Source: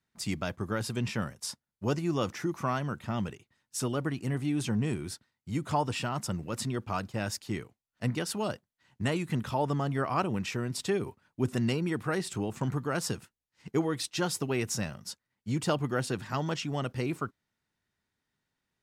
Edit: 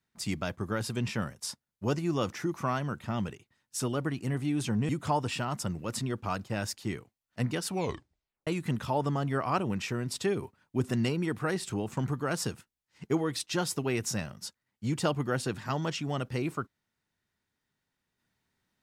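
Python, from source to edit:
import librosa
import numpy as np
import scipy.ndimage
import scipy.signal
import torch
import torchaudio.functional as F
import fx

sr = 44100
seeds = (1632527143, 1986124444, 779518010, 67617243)

y = fx.edit(x, sr, fx.cut(start_s=4.89, length_s=0.64),
    fx.tape_stop(start_s=8.31, length_s=0.8), tone=tone)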